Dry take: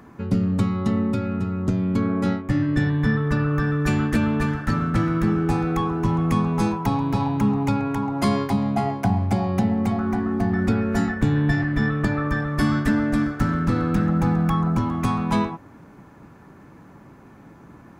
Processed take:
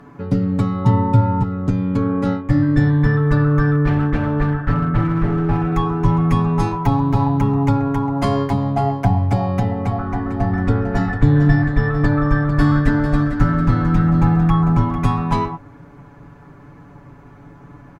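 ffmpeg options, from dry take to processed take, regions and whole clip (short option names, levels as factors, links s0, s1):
-filter_complex "[0:a]asettb=1/sr,asplit=3[s0][s1][s2];[s0]atrim=end=0.854[s3];[s1]atrim=start=0.85:end=1.43,asetpts=PTS-STARTPTS,afade=t=in:d=0.004:c=qsin,afade=t=out:st=0.576:d=0.004:c=qsin,equalizer=f=120:t=o:w=0.87:g=12,aeval=exprs='val(0)+0.0562*sin(2*PI*900*n/s)':c=same[s4];[s2]atrim=start=1.426[s5];[s3][s4]acrossfade=d=0.004:c1=hsin:c2=qsin[s6];[s6][s5]acrossfade=d=0.004:c1=qsin:c2=hsin,asettb=1/sr,asplit=3[s7][s8][s9];[s7]atrim=end=3.754[s10];[s8]atrim=start=3.75:end=5.72,asetpts=PTS-STARTPTS,afade=t=in:d=0.004:c=qsin,afade=t=out:st=1.966:d=0.004:c=qsin,lowpass=2300,volume=7.5,asoftclip=hard,volume=0.133[s11];[s9]atrim=start=5.716[s12];[s10][s11]acrossfade=d=0.004:c1=hsin:c2=qsin[s13];[s13][s12]acrossfade=d=0.004:c1=qsin:c2=hsin,asettb=1/sr,asplit=3[s14][s15][s16];[s14]atrim=end=9.824[s17];[s15]atrim=start=9.82:end=14.98,asetpts=PTS-STARTPTS,afade=t=in:d=0.004:c=qsin,afade=t=out:st=5.156:d=0.004:c=qsin,highshelf=f=9200:g=-8.5,aecho=1:1:449:0.335,atrim=end_sample=227556[s18];[s16]atrim=start=14.976[s19];[s17][s18]acrossfade=d=0.004:c1=hsin:c2=qsin[s20];[s20][s19]acrossfade=d=0.004:c1=qsin:c2=hsin,aemphasis=mode=reproduction:type=cd,aecho=1:1:7:0.7,asubboost=boost=2.5:cutoff=110,volume=1.26"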